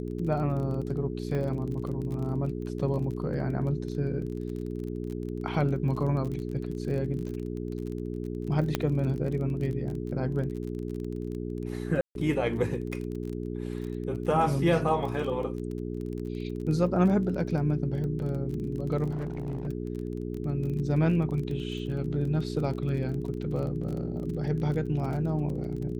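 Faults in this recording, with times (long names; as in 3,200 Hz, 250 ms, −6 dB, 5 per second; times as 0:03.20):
surface crackle 28 per second −35 dBFS
mains hum 60 Hz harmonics 7 −34 dBFS
0:01.35: drop-out 2.2 ms
0:08.75: click −11 dBFS
0:12.01–0:12.15: drop-out 142 ms
0:19.10–0:19.68: clipping −28.5 dBFS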